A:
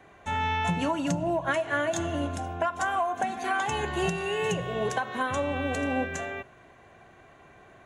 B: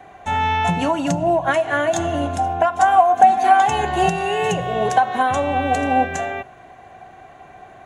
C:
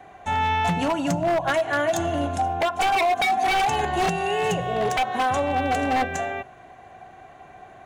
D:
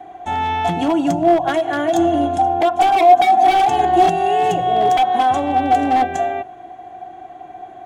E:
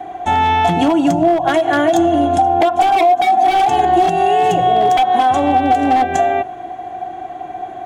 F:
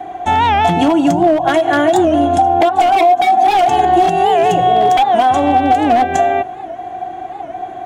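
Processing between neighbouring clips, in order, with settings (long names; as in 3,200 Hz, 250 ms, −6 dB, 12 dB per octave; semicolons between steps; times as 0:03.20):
parametric band 750 Hz +13.5 dB 0.21 octaves; level +6.5 dB
wave folding −13 dBFS; level −3 dB
hollow resonant body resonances 330/720/3,300 Hz, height 15 dB, ringing for 45 ms; level −1 dB
downward compressor 6 to 1, threshold −18 dBFS, peak gain reduction 12 dB; level +8 dB
wow of a warped record 78 rpm, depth 160 cents; level +1.5 dB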